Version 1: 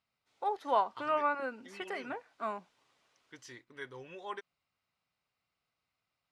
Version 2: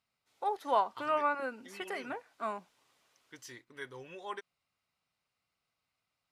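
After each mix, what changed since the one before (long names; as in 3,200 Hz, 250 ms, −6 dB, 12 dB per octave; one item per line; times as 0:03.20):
master: remove high-frequency loss of the air 52 metres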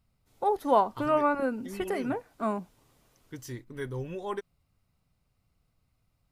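master: remove resonant band-pass 2,700 Hz, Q 0.5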